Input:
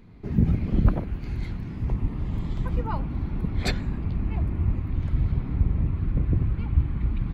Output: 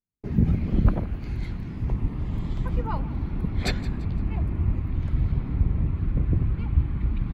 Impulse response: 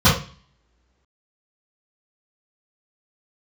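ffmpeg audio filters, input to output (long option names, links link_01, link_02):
-filter_complex "[0:a]asplit=2[link_01][link_02];[link_02]aecho=0:1:170|340|510:0.126|0.0478|0.0182[link_03];[link_01][link_03]amix=inputs=2:normalize=0,agate=range=-46dB:threshold=-41dB:ratio=16:detection=peak"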